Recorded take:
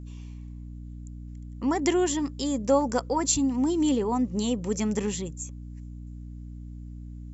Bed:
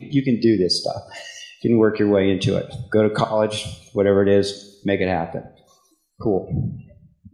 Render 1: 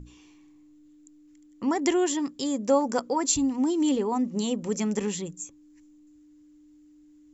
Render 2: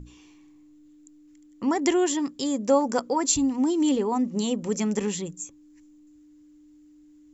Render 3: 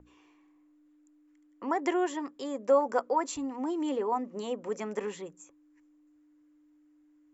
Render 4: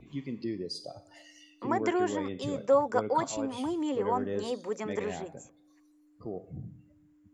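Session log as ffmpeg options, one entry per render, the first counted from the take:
-af "bandreject=f=60:t=h:w=6,bandreject=f=120:t=h:w=6,bandreject=f=180:t=h:w=6,bandreject=f=240:t=h:w=6"
-af "volume=1.5dB"
-filter_complex "[0:a]acrossover=split=400 2100:gain=0.112 1 0.141[a][b][c];[a][b][c]amix=inputs=3:normalize=0,bandreject=f=830:w=15"
-filter_complex "[1:a]volume=-18.5dB[a];[0:a][a]amix=inputs=2:normalize=0"

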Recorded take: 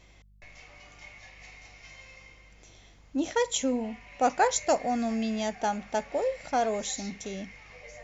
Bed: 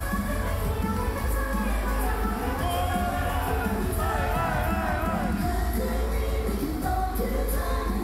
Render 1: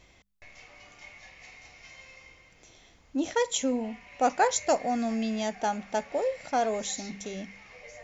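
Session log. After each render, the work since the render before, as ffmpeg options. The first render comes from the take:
-af "bandreject=f=50:t=h:w=4,bandreject=f=100:t=h:w=4,bandreject=f=150:t=h:w=4,bandreject=f=200:t=h:w=4"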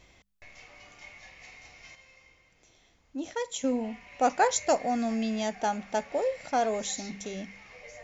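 -filter_complex "[0:a]asplit=3[a][b][c];[a]atrim=end=1.952[d];[b]atrim=start=1.948:end=3.642,asetpts=PTS-STARTPTS,volume=-6.5dB[e];[c]atrim=start=3.638[f];[d][e]acrossfade=d=0.004:c1=hsin:c2=hsin[g];[g][f]acrossfade=d=0.004:c1=hsin:c2=hsin"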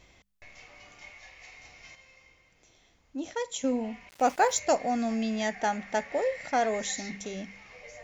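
-filter_complex "[0:a]asettb=1/sr,asplit=3[a][b][c];[a]atrim=end=1.104[d];[b]atrim=start=1.1:end=1.57,asetpts=PTS-STARTPTS,afade=t=in:d=0.004:c=qsin,afade=t=out:st=0.466:d=0.004:c=qsin,equalizer=f=180:w=1.2:g=-9[e];[c]atrim=start=1.566[f];[d][e]acrossfade=d=0.004:c1=hsin:c2=qsin[g];[g][f]acrossfade=d=0.004:c1=qsin:c2=hsin,asettb=1/sr,asplit=3[h][i][j];[h]atrim=end=4.094[k];[i]atrim=start=4.09:end=4.59,asetpts=PTS-STARTPTS,afade=t=in:d=0.004:c=qsin,afade=t=out:st=0.496:d=0.004:c=qsin,aeval=exprs='val(0)*gte(abs(val(0)),0.00668)':c=same[l];[j]atrim=start=4.586[m];[k][l]acrossfade=d=0.004:c1=hsin:c2=qsin[n];[n][m]acrossfade=d=0.004:c1=qsin:c2=hsin,asettb=1/sr,asplit=3[o][p][q];[o]atrim=end=5.404[r];[p]atrim=start=5.4:end=7.17,asetpts=PTS-STARTPTS,afade=t=in:d=0.004:c=qsin,afade=t=out:st=1.766:d=0.004:c=qsin,equalizer=f=1.9k:t=o:w=0.36:g=10[s];[q]atrim=start=7.166[t];[r][s]acrossfade=d=0.004:c1=hsin:c2=qsin[u];[u][t]acrossfade=d=0.004:c1=qsin:c2=hsin"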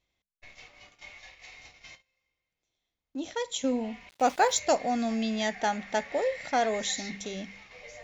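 -af "agate=range=-23dB:threshold=-51dB:ratio=16:detection=peak,equalizer=f=3.7k:w=2.4:g=6.5"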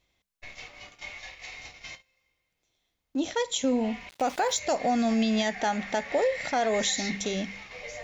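-af "acontrast=73,alimiter=limit=-17.5dB:level=0:latency=1:release=134"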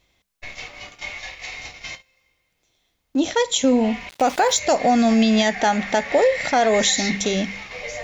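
-af "volume=8.5dB"

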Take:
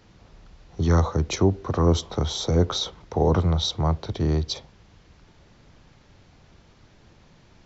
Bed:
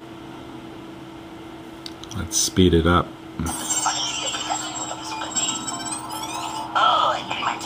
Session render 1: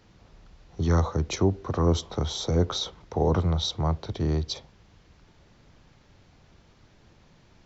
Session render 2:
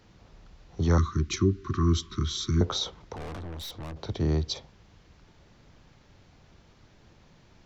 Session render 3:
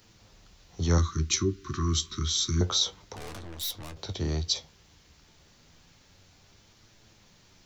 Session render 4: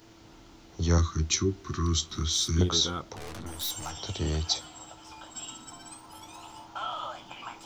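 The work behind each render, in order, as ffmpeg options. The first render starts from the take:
-af "volume=-3dB"
-filter_complex "[0:a]asettb=1/sr,asplit=3[a][b][c];[a]atrim=end=0.984[d];[b]atrim=start=0.98:end=2.61,asetpts=PTS-STARTPTS,afade=t=in:d=0.004:c=qsin,afade=t=out:st=1.626:d=0.004:c=qsin,asuperstop=centerf=640:order=20:qfactor=0.97[e];[c]atrim=start=2.606[f];[d][e]acrossfade=d=0.004:c1=hsin:c2=qsin[g];[g][f]acrossfade=d=0.004:c1=qsin:c2=hsin,asettb=1/sr,asplit=3[h][i][j];[h]atrim=end=3.164[k];[i]atrim=start=3.16:end=3.97,asetpts=PTS-STARTPTS,afade=t=in:d=0.004:c=qsin,afade=t=out:st=0.806:d=0.004:c=qsin,aeval=exprs='(tanh(70.8*val(0)+0.35)-tanh(0.35))/70.8':c=same[l];[j]atrim=start=3.966[m];[k][l]acrossfade=d=0.004:c1=hsin:c2=qsin[n];[n][m]acrossfade=d=0.004:c1=qsin:c2=hsin"
-af "crystalizer=i=4.5:c=0,flanger=delay=8.7:depth=5.3:regen=58:speed=0.29:shape=triangular"
-filter_complex "[1:a]volume=-17.5dB[a];[0:a][a]amix=inputs=2:normalize=0"

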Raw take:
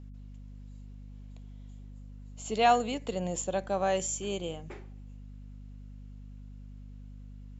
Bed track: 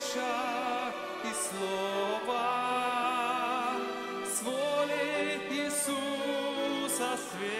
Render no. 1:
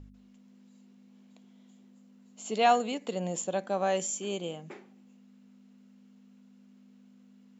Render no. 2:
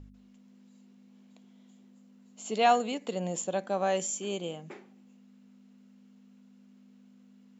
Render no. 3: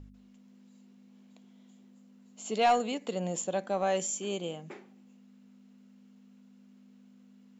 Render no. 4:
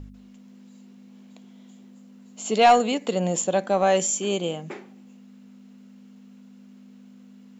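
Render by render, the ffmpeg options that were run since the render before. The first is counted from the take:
-af "bandreject=f=50:t=h:w=4,bandreject=f=100:t=h:w=4,bandreject=f=150:t=h:w=4"
-af anull
-af "asoftclip=type=tanh:threshold=-15.5dB"
-af "volume=9dB"

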